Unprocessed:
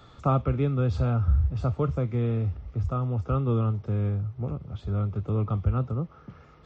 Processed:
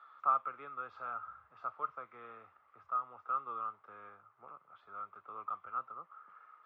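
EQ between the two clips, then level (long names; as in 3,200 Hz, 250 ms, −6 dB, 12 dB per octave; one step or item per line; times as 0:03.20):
four-pole ladder band-pass 1,400 Hz, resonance 60%
high-shelf EQ 2,100 Hz −9.5 dB
+6.5 dB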